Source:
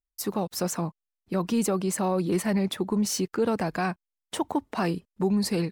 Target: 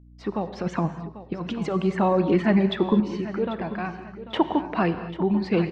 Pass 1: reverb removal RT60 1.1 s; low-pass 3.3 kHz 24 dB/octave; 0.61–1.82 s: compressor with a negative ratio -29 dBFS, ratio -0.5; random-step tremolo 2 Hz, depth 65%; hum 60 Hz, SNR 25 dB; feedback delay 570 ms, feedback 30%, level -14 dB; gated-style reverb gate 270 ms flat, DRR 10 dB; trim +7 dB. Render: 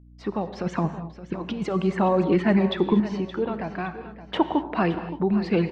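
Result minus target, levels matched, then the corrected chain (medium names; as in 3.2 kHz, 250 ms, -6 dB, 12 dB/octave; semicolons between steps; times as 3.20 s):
echo 222 ms early
reverb removal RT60 1.1 s; low-pass 3.3 kHz 24 dB/octave; 0.61–1.82 s: compressor with a negative ratio -29 dBFS, ratio -0.5; random-step tremolo 2 Hz, depth 65%; hum 60 Hz, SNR 25 dB; feedback delay 792 ms, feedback 30%, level -14 dB; gated-style reverb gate 270 ms flat, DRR 10 dB; trim +7 dB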